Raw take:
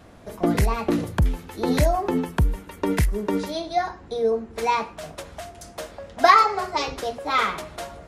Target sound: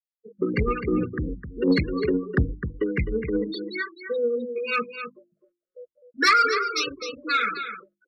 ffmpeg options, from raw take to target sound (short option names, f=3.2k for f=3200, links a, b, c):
-filter_complex "[0:a]highpass=f=130:p=1,afftfilt=real='re*gte(hypot(re,im),0.0794)':imag='im*gte(hypot(re,im),0.0794)':win_size=1024:overlap=0.75,asetrate=46722,aresample=44100,atempo=0.943874,tremolo=f=2.9:d=0.65,asuperstop=centerf=790:order=12:qfactor=1.1,highshelf=f=3.8k:g=10,bandreject=f=50:t=h:w=6,bandreject=f=100:t=h:w=6,bandreject=f=150:t=h:w=6,bandreject=f=200:t=h:w=6,bandreject=f=250:t=h:w=6,bandreject=f=300:t=h:w=6,bandreject=f=350:t=h:w=6,asplit=2[a][b];[b]aecho=0:1:257:0.316[c];[a][c]amix=inputs=2:normalize=0,dynaudnorm=f=110:g=7:m=5.5dB,asoftclip=type=tanh:threshold=-8.5dB"